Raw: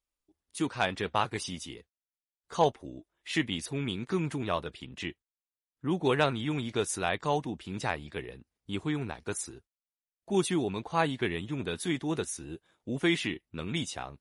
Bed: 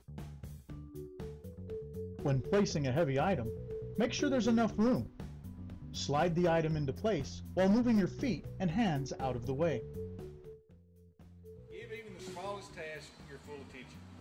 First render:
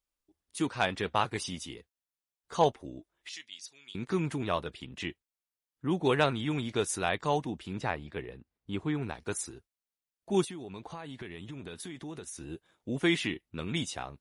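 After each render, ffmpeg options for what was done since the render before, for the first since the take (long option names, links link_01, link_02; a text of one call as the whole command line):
ffmpeg -i in.wav -filter_complex "[0:a]asettb=1/sr,asplit=3[link_01][link_02][link_03];[link_01]atrim=end=3.294[link_04];[link_02]atrim=start=3.29:end=3.95,asetpts=PTS-STARTPTS,afade=type=in:duration=0.004:curve=qsin,afade=type=out:start_time=0.656:duration=0.004:curve=qsin,bandpass=frequency=5500:width_type=q:width=2.4[link_05];[link_03]atrim=start=3.946[link_06];[link_04][link_05]acrossfade=duration=0.004:curve1=hsin:curve2=qsin[link_07];[link_07][link_06]acrossfade=duration=0.004:curve1=qsin:curve2=hsin,asettb=1/sr,asplit=3[link_08][link_09][link_10];[link_08]atrim=end=7.734[link_11];[link_09]atrim=start=7.73:end=9.03,asetpts=PTS-STARTPTS,afade=type=in:duration=0.004:curve=qsin,afade=type=out:start_time=1.296:duration=0.004:curve=qsin,highshelf=frequency=4200:gain=-12[link_12];[link_10]atrim=start=9.026[link_13];[link_11][link_12]acrossfade=duration=0.004:curve1=hsin:curve2=qsin[link_14];[link_14][link_13]acrossfade=duration=0.004:curve1=qsin:curve2=hsin,asettb=1/sr,asplit=3[link_15][link_16][link_17];[link_15]atrim=end=10.444[link_18];[link_16]atrim=start=10.44:end=12.41,asetpts=PTS-STARTPTS,afade=type=in:duration=0.004:curve=qsin,afade=type=out:start_time=1.966:duration=0.004:curve=qsin,acompressor=threshold=-38dB:ratio=10:attack=3.2:release=140:knee=1:detection=peak[link_19];[link_17]atrim=start=12.406[link_20];[link_18][link_19]acrossfade=duration=0.004:curve1=hsin:curve2=qsin[link_21];[link_21][link_20]acrossfade=duration=0.004:curve1=qsin:curve2=hsin" out.wav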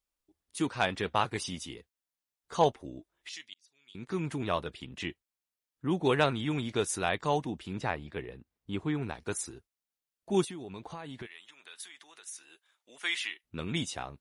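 ffmpeg -i in.wav -filter_complex "[0:a]asplit=3[link_01][link_02][link_03];[link_01]afade=type=out:start_time=11.25:duration=0.02[link_04];[link_02]highpass=1300,afade=type=in:start_time=11.25:duration=0.02,afade=type=out:start_time=13.43:duration=0.02[link_05];[link_03]afade=type=in:start_time=13.43:duration=0.02[link_06];[link_04][link_05][link_06]amix=inputs=3:normalize=0,asplit=2[link_07][link_08];[link_07]atrim=end=3.54,asetpts=PTS-STARTPTS,afade=type=out:start_time=3.536:duration=0.004:curve=hsin[link_09];[link_08]atrim=start=3.54,asetpts=PTS-STARTPTS,afade=type=in:duration=0.92[link_10];[link_09][link_10]concat=n=2:v=0:a=1" out.wav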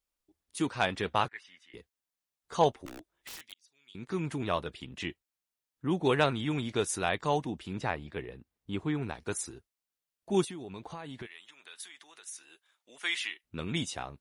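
ffmpeg -i in.wav -filter_complex "[0:a]asettb=1/sr,asplit=3[link_01][link_02][link_03];[link_01]atrim=end=1.284[link_04];[link_02]atrim=start=1.28:end=1.74,asetpts=PTS-STARTPTS,afade=type=in:duration=0.004:curve=qsin,afade=type=out:start_time=0.456:duration=0.004:curve=qsin,bandpass=frequency=1800:width_type=q:width=4.6[link_05];[link_03]atrim=start=1.736[link_06];[link_04][link_05]acrossfade=duration=0.004:curve1=hsin:curve2=qsin[link_07];[link_07][link_06]acrossfade=duration=0.004:curve1=qsin:curve2=hsin,asettb=1/sr,asplit=3[link_08][link_09][link_10];[link_08]atrim=end=2.864[link_11];[link_09]atrim=start=2.86:end=3.52,asetpts=PTS-STARTPTS,afade=type=in:duration=0.004:curve=qsin,afade=type=out:start_time=0.656:duration=0.004:curve=qsin,aeval=exprs='(mod(79.4*val(0)+1,2)-1)/79.4':channel_layout=same[link_12];[link_10]atrim=start=3.516[link_13];[link_11][link_12]acrossfade=duration=0.004:curve1=hsin:curve2=qsin[link_14];[link_14][link_13]acrossfade=duration=0.004:curve1=qsin:curve2=hsin" out.wav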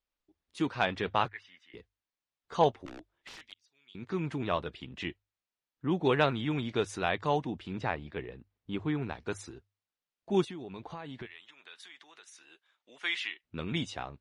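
ffmpeg -i in.wav -af "lowpass=4400,bandreject=frequency=50:width_type=h:width=6,bandreject=frequency=100:width_type=h:width=6" out.wav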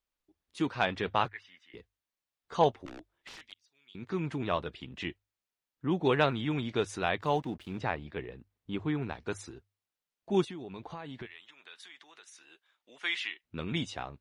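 ffmpeg -i in.wav -filter_complex "[0:a]asettb=1/sr,asplit=3[link_01][link_02][link_03];[link_01]atrim=end=7.214[link_04];[link_02]atrim=start=7.21:end=7.8,asetpts=PTS-STARTPTS,afade=type=in:duration=0.004:curve=qsin,afade=type=out:start_time=0.586:duration=0.004:curve=qsin,aeval=exprs='sgn(val(0))*max(abs(val(0))-0.00168,0)':channel_layout=same[link_05];[link_03]atrim=start=7.796[link_06];[link_04][link_05]acrossfade=duration=0.004:curve1=hsin:curve2=qsin[link_07];[link_07][link_06]acrossfade=duration=0.004:curve1=qsin:curve2=hsin" out.wav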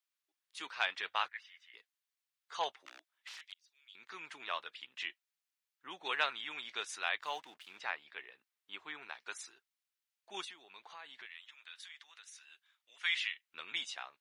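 ffmpeg -i in.wav -af "highpass=1400" out.wav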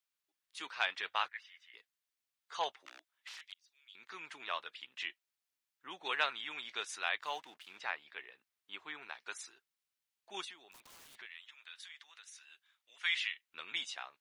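ffmpeg -i in.wav -filter_complex "[0:a]asplit=3[link_01][link_02][link_03];[link_01]afade=type=out:start_time=10.71:duration=0.02[link_04];[link_02]aeval=exprs='(mod(422*val(0)+1,2)-1)/422':channel_layout=same,afade=type=in:start_time=10.71:duration=0.02,afade=type=out:start_time=11.15:duration=0.02[link_05];[link_03]afade=type=in:start_time=11.15:duration=0.02[link_06];[link_04][link_05][link_06]amix=inputs=3:normalize=0" out.wav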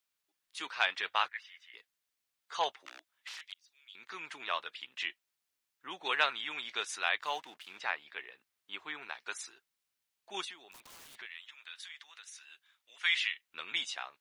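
ffmpeg -i in.wav -af "volume=4dB" out.wav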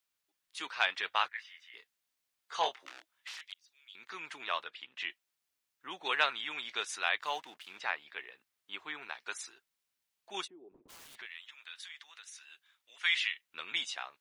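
ffmpeg -i in.wav -filter_complex "[0:a]asettb=1/sr,asplit=3[link_01][link_02][link_03];[link_01]atrim=end=1.354[link_04];[link_02]atrim=start=1.35:end=3.31,asetpts=PTS-STARTPTS,afade=type=in:duration=0.004:curve=qsin,afade=type=out:start_time=1.956:duration=0.004:curve=qsin,asplit=2[link_05][link_06];[link_06]adelay=25,volume=-6.5dB[link_07];[link_05][link_07]amix=inputs=2:normalize=0,atrim=end_sample=86436[link_08];[link_03]atrim=start=3.306[link_09];[link_04][link_08]acrossfade=duration=0.004:curve1=hsin:curve2=qsin[link_10];[link_10][link_09]acrossfade=duration=0.004:curve1=qsin:curve2=hsin,asettb=1/sr,asplit=3[link_11][link_12][link_13];[link_11]atrim=end=4.644[link_14];[link_12]atrim=start=4.64:end=5.08,asetpts=PTS-STARTPTS,afade=type=in:duration=0.004:curve=qsin,afade=type=out:start_time=0.436:duration=0.004:curve=qsin,lowpass=frequency=3400:poles=1[link_15];[link_13]atrim=start=5.076[link_16];[link_14][link_15]acrossfade=duration=0.004:curve1=hsin:curve2=qsin[link_17];[link_17][link_16]acrossfade=duration=0.004:curve1=qsin:curve2=hsin,asplit=3[link_18][link_19][link_20];[link_18]afade=type=out:start_time=10.46:duration=0.02[link_21];[link_19]lowpass=frequency=370:width_type=q:width=3.2,afade=type=in:start_time=10.46:duration=0.02,afade=type=out:start_time=10.88:duration=0.02[link_22];[link_20]afade=type=in:start_time=10.88:duration=0.02[link_23];[link_21][link_22][link_23]amix=inputs=3:normalize=0" out.wav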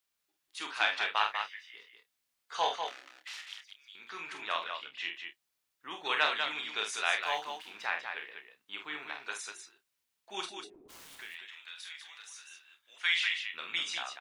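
ffmpeg -i in.wav -filter_complex "[0:a]asplit=2[link_01][link_02];[link_02]adelay=29,volume=-9.5dB[link_03];[link_01][link_03]amix=inputs=2:normalize=0,asplit=2[link_04][link_05];[link_05]aecho=0:1:46.65|195.3:0.501|0.501[link_06];[link_04][link_06]amix=inputs=2:normalize=0" out.wav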